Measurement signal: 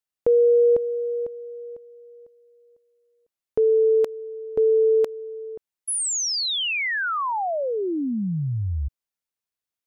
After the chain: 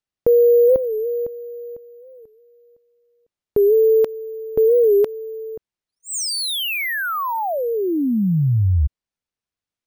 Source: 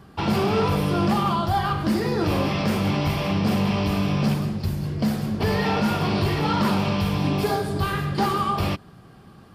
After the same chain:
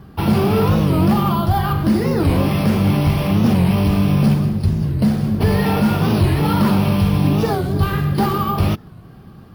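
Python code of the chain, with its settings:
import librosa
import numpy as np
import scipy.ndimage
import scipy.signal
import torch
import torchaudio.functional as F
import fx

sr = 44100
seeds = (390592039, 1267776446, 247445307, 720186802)

y = np.repeat(scipy.signal.resample_poly(x, 1, 3), 3)[:len(x)]
y = fx.low_shelf(y, sr, hz=290.0, db=8.5)
y = fx.record_warp(y, sr, rpm=45.0, depth_cents=160.0)
y = y * 10.0 ** (1.5 / 20.0)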